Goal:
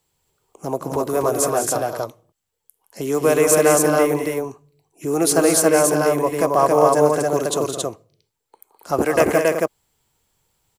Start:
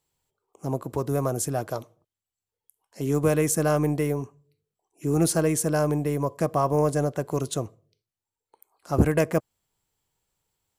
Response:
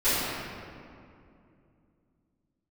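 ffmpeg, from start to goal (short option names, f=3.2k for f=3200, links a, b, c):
-filter_complex "[0:a]acrossover=split=310|7400[a][b][c];[a]acompressor=threshold=-42dB:ratio=10[d];[d][b][c]amix=inputs=3:normalize=0,aecho=1:1:169.1|207|274.1:0.282|0.398|0.794,volume=7.5dB"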